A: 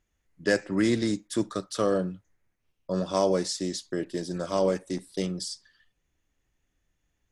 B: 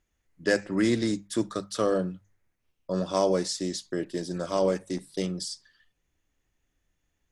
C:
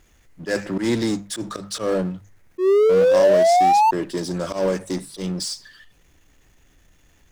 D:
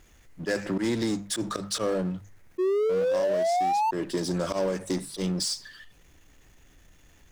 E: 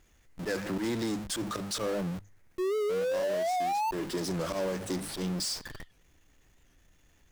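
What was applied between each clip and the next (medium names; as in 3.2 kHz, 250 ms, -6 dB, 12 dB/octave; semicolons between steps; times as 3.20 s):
hum notches 50/100/150/200 Hz
painted sound rise, 2.58–3.91 s, 360–910 Hz -17 dBFS; slow attack 113 ms; power-law waveshaper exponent 0.7
compression 6:1, threshold -24 dBFS, peak gain reduction 11.5 dB
in parallel at -6 dB: Schmitt trigger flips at -42.5 dBFS; on the sum: warped record 78 rpm, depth 100 cents; trim -7 dB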